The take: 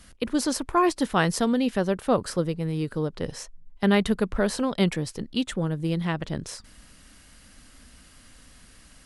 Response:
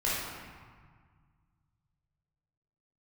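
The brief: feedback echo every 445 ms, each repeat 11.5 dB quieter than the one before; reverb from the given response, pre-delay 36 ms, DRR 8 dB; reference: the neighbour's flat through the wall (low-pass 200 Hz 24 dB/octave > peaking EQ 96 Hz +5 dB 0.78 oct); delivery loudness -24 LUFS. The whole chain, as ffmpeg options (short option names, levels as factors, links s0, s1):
-filter_complex "[0:a]aecho=1:1:445|890|1335:0.266|0.0718|0.0194,asplit=2[s0][s1];[1:a]atrim=start_sample=2205,adelay=36[s2];[s1][s2]afir=irnorm=-1:irlink=0,volume=0.133[s3];[s0][s3]amix=inputs=2:normalize=0,lowpass=f=200:w=0.5412,lowpass=f=200:w=1.3066,equalizer=f=96:t=o:w=0.78:g=5,volume=2.37"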